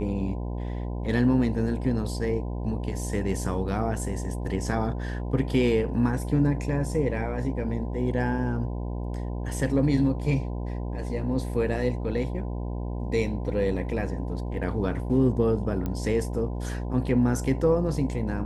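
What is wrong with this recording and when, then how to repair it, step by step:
buzz 60 Hz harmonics 17 -31 dBFS
15.86 pop -18 dBFS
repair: de-click; de-hum 60 Hz, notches 17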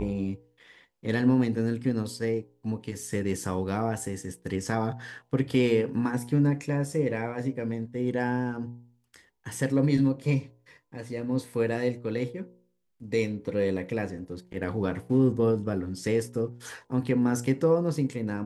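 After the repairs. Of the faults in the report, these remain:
15.86 pop

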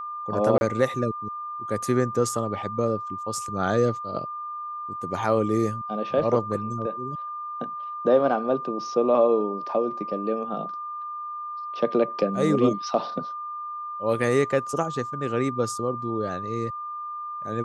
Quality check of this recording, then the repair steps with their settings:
tone 1200 Hz -31 dBFS
0.58–0.61 gap 31 ms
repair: notch 1200 Hz, Q 30; interpolate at 0.58, 31 ms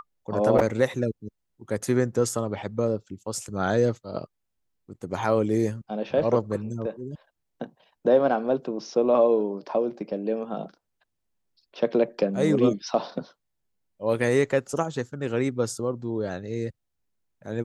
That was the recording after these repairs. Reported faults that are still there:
none

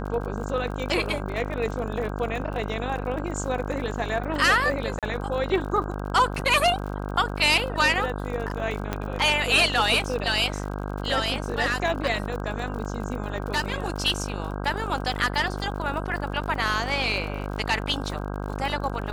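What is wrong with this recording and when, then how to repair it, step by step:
buzz 50 Hz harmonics 32 -31 dBFS
crackle 53/s -33 dBFS
4.99–5.03 gap 37 ms
8.93 pop -12 dBFS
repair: de-click; de-hum 50 Hz, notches 32; interpolate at 4.99, 37 ms

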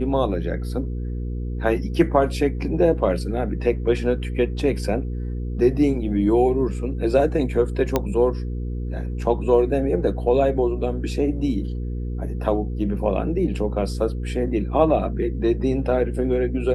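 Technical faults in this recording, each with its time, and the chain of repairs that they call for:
hum 60 Hz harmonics 8 -27 dBFS
7.96 pop -6 dBFS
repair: de-click; de-hum 60 Hz, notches 8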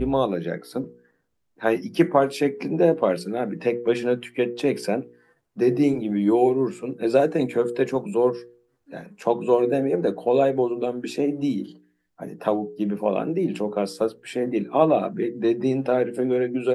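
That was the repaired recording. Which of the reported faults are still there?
none

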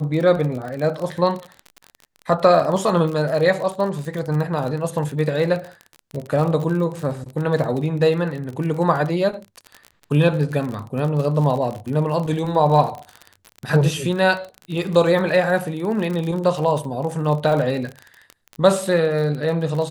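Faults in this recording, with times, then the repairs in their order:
crackle 38/s -26 dBFS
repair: de-click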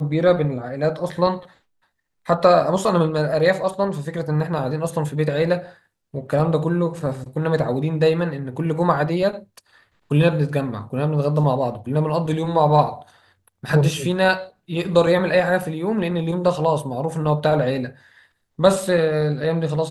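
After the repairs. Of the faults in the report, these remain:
none

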